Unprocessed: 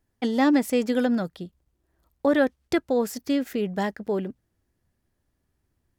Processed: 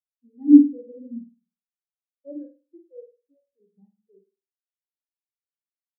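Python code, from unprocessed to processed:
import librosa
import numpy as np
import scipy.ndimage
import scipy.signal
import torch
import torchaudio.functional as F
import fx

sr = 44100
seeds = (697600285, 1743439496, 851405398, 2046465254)

y = fx.highpass(x, sr, hz=290.0, slope=24, at=(2.33, 3.6))
y = fx.room_flutter(y, sr, wall_m=8.8, rt60_s=1.3)
y = fx.spectral_expand(y, sr, expansion=4.0)
y = F.gain(torch.from_numpy(y), 4.0).numpy()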